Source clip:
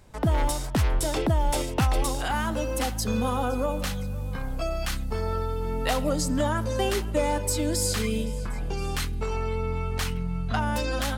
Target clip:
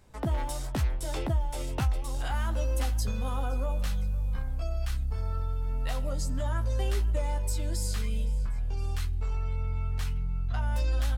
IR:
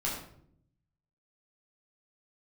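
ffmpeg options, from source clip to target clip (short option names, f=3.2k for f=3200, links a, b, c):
-filter_complex "[0:a]asubboost=boost=7:cutoff=91,acompressor=threshold=-19dB:ratio=6,asplit=2[a][b];[b]adelay=15,volume=-8dB[c];[a][c]amix=inputs=2:normalize=0,volume=-6dB"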